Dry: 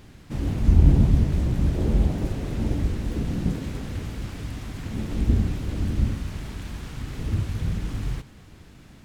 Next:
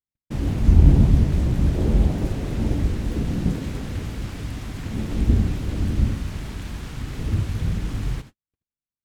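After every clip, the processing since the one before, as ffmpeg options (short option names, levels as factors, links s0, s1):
-af "agate=range=0.00112:threshold=0.0112:ratio=16:detection=peak,volume=1.33"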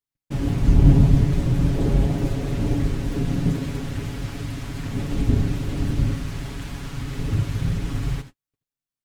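-af "aecho=1:1:7.2:0.67"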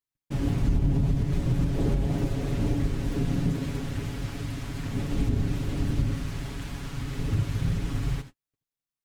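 -af "alimiter=limit=0.237:level=0:latency=1:release=162,volume=0.708"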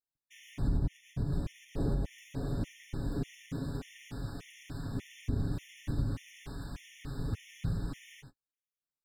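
-af "afftfilt=real='re*gt(sin(2*PI*1.7*pts/sr)*(1-2*mod(floor(b*sr/1024/1800),2)),0)':imag='im*gt(sin(2*PI*1.7*pts/sr)*(1-2*mod(floor(b*sr/1024/1800),2)),0)':win_size=1024:overlap=0.75,volume=0.501"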